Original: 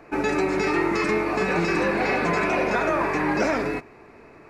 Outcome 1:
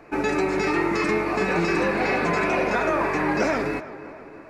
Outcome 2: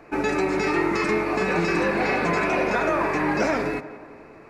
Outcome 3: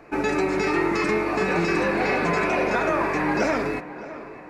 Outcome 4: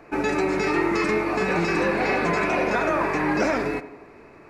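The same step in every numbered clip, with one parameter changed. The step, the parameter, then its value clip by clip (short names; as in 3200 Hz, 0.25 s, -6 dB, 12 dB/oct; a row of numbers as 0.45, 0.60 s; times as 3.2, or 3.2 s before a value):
tape echo, time: 322, 175, 610, 88 ms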